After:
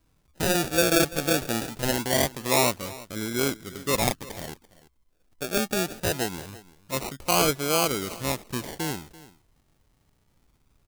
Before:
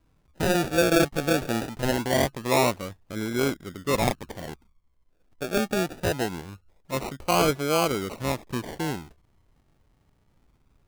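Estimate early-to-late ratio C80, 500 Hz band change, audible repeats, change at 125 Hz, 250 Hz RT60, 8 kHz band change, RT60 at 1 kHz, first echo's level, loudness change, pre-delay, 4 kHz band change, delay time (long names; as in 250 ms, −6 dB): no reverb audible, −2.0 dB, 1, −2.0 dB, no reverb audible, +6.0 dB, no reverb audible, −19.0 dB, +0.5 dB, no reverb audible, +3.0 dB, 338 ms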